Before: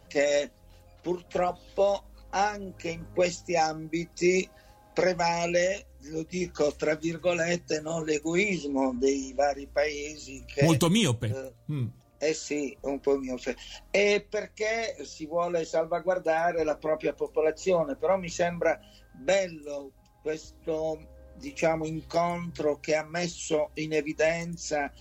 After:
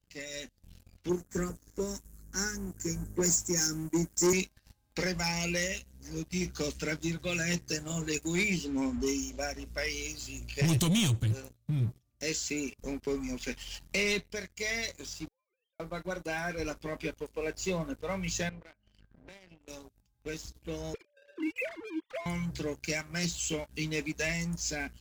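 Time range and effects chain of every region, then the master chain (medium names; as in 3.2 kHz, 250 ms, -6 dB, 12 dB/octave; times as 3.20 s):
1.09–4.33 s: FFT filter 100 Hz 0 dB, 320 Hz +8 dB, 460 Hz +2 dB, 700 Hz -16 dB, 1.1 kHz -3 dB, 1.7 kHz +5 dB, 3 kHz -25 dB, 6.7 kHz +13 dB + three bands expanded up and down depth 40%
15.28–15.80 s: formants replaced by sine waves + differentiator + compression 16:1, threshold -56 dBFS
18.49–19.68 s: Bessel low-pass 2.3 kHz + compression 2:1, threshold -50 dBFS
20.94–22.26 s: formants replaced by sine waves + three bands compressed up and down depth 100%
whole clip: amplifier tone stack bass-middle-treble 6-0-2; waveshaping leveller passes 3; level rider gain up to 12 dB; trim -5.5 dB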